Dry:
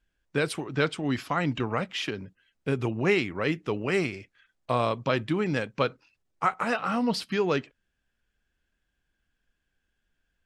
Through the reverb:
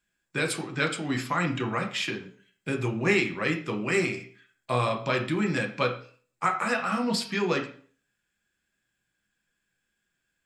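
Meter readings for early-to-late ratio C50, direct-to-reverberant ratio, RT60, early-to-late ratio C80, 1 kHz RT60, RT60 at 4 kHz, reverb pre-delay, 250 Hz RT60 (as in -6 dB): 10.5 dB, 3.0 dB, 0.45 s, 15.0 dB, 0.45 s, 0.45 s, 3 ms, 0.55 s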